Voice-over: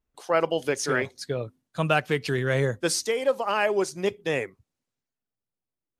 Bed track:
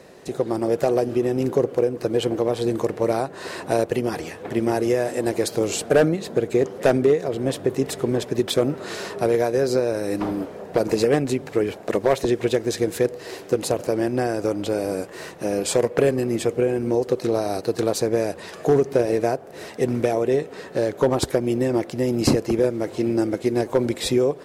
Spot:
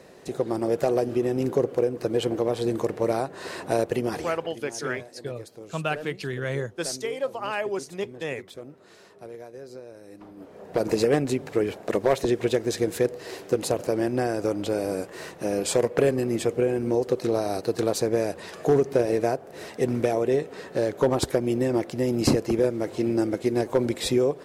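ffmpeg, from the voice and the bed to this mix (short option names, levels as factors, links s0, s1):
-filter_complex "[0:a]adelay=3950,volume=0.562[s0];[1:a]volume=5.96,afade=t=out:st=4.32:d=0.22:silence=0.125893,afade=t=in:st=10.35:d=0.54:silence=0.11885[s1];[s0][s1]amix=inputs=2:normalize=0"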